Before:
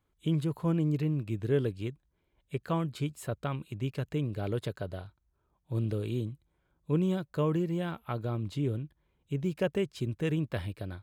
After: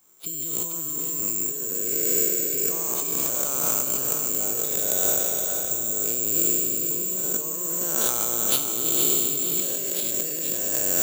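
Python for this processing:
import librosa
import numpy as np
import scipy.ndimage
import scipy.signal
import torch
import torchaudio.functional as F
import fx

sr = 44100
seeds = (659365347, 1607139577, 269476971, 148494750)

y = fx.spec_trails(x, sr, decay_s=2.64)
y = fx.over_compress(y, sr, threshold_db=-36.0, ratio=-1.0)
y = fx.peak_eq(y, sr, hz=4200.0, db=14.0, octaves=0.66, at=(8.01, 10.11))
y = (np.kron(y[::6], np.eye(6)[0]) * 6)[:len(y)]
y = scipy.signal.sosfilt(scipy.signal.butter(2, 250.0, 'highpass', fs=sr, output='sos'), y)
y = fx.peak_eq(y, sr, hz=1800.0, db=-3.0, octaves=0.25)
y = fx.echo_feedback(y, sr, ms=470, feedback_pct=40, wet_db=-6.0)
y = y * 10.0 ** (2.0 / 20.0)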